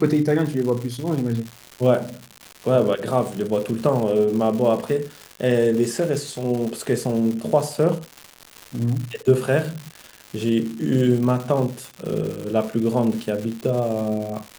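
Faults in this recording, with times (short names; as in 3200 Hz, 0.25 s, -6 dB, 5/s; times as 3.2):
crackle 280/s -28 dBFS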